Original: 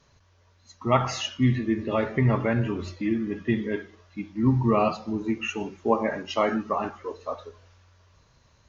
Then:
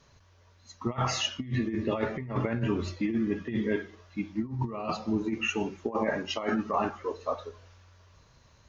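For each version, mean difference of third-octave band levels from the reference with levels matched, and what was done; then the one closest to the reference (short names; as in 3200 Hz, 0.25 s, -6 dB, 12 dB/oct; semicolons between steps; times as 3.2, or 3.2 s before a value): 5.0 dB: negative-ratio compressor -26 dBFS, ratio -0.5; gain -2 dB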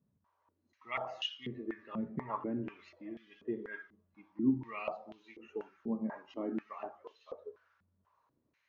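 7.5 dB: stepped band-pass 4.1 Hz 200–3200 Hz; gain -2.5 dB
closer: first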